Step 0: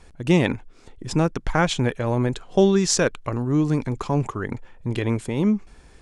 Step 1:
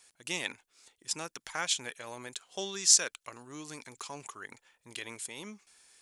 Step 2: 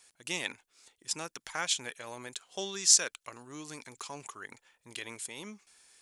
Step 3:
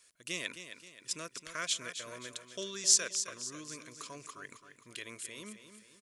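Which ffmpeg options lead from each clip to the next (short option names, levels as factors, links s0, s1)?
-af "aderivative,volume=1.33"
-af anull
-filter_complex "[0:a]asuperstop=centerf=820:order=8:qfactor=3.2,asplit=2[s0][s1];[s1]aecho=0:1:264|528|792|1056|1320:0.316|0.139|0.0612|0.0269|0.0119[s2];[s0][s2]amix=inputs=2:normalize=0,volume=0.708"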